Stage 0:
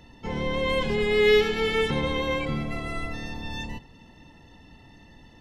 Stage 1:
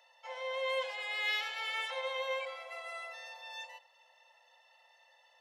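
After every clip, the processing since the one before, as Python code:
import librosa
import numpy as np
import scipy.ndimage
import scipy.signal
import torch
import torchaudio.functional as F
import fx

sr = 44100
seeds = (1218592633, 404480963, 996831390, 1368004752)

y = scipy.signal.sosfilt(scipy.signal.cheby1(8, 1.0, 510.0, 'highpass', fs=sr, output='sos'), x)
y = y * 10.0 ** (-7.5 / 20.0)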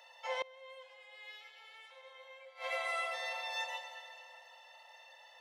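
y = fx.rev_plate(x, sr, seeds[0], rt60_s=2.8, hf_ratio=0.9, predelay_ms=0, drr_db=5.0)
y = fx.gate_flip(y, sr, shuts_db=-31.0, range_db=-25)
y = y * 10.0 ** (6.0 / 20.0)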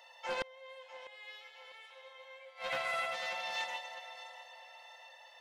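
y = fx.echo_feedback(x, sr, ms=649, feedback_pct=39, wet_db=-14.5)
y = fx.doppler_dist(y, sr, depth_ms=0.43)
y = y * 10.0 ** (1.0 / 20.0)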